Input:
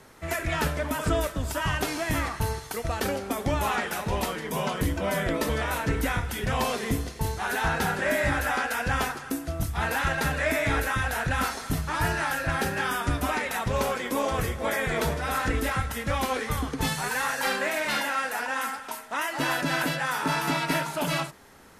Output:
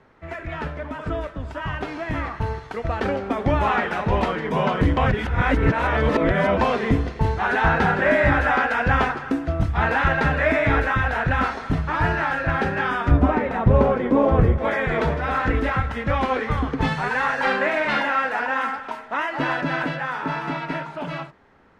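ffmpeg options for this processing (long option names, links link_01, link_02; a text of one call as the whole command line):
ffmpeg -i in.wav -filter_complex "[0:a]asettb=1/sr,asplit=3[link_01][link_02][link_03];[link_01]atrim=end=13.114[link_04];[link_02]atrim=start=13.11:end=14.58,asetpts=PTS-STARTPTS,afade=type=in:duration=0.004:curve=qsin,afade=type=out:start_time=1.466:duration=0.004:curve=qsin,tiltshelf=frequency=970:gain=8.5[link_05];[link_03]atrim=start=14.576[link_06];[link_04][link_05]acrossfade=duration=0.004:curve1=hsin:curve2=qsin[link_07];[link_07][link_06]acrossfade=duration=0.004:curve1=qsin:curve2=hsin,asplit=3[link_08][link_09][link_10];[link_08]atrim=end=4.972[link_11];[link_09]atrim=start=4.968:end=6.612,asetpts=PTS-STARTPTS,areverse[link_12];[link_10]atrim=start=6.608[link_13];[link_11][link_12]acrossfade=duration=0.004:curve1=hsin:curve2=hsin[link_14];[link_14][link_13]acrossfade=duration=0.004:curve1=hsin:curve2=hsin,lowpass=2300,dynaudnorm=framelen=520:gausssize=11:maxgain=11dB,volume=-2.5dB" out.wav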